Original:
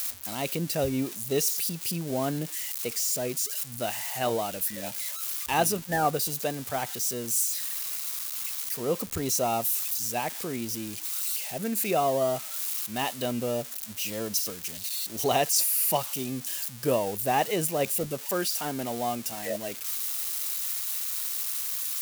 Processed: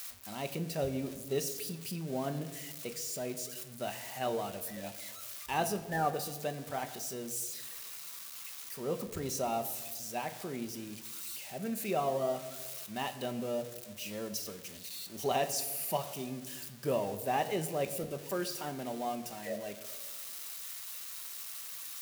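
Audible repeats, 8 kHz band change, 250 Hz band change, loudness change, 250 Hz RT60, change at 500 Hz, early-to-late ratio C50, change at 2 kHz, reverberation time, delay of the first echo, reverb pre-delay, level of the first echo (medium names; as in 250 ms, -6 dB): no echo, -11.5 dB, -6.5 dB, -9.0 dB, 1.5 s, -6.0 dB, 12.5 dB, -7.0 dB, 1.4 s, no echo, 5 ms, no echo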